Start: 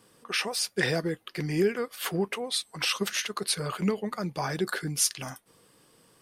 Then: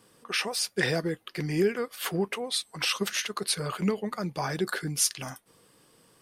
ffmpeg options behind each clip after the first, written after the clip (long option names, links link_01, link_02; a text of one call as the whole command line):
ffmpeg -i in.wav -af anull out.wav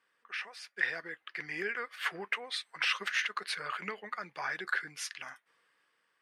ffmpeg -i in.wav -af "dynaudnorm=framelen=300:gausssize=7:maxgain=11.5dB,bandpass=frequency=1800:width_type=q:width=2.3:csg=0,volume=-4.5dB" out.wav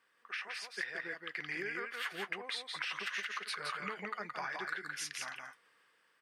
ffmpeg -i in.wav -af "acompressor=threshold=-39dB:ratio=6,aecho=1:1:170:0.631,volume=2dB" out.wav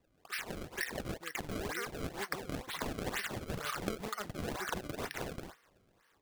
ffmpeg -i in.wav -af "acrusher=samples=28:mix=1:aa=0.000001:lfo=1:lforange=44.8:lforate=2.1,volume=1.5dB" out.wav